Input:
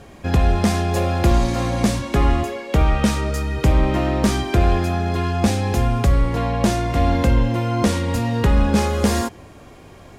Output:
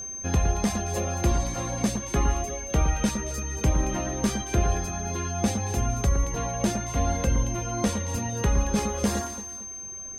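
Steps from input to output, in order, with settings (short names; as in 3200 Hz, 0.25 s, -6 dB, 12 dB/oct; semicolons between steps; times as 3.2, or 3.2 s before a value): reverb removal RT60 1.1 s; whine 6300 Hz -27 dBFS; echo with dull and thin repeats by turns 0.113 s, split 1900 Hz, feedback 61%, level -7.5 dB; gain -6.5 dB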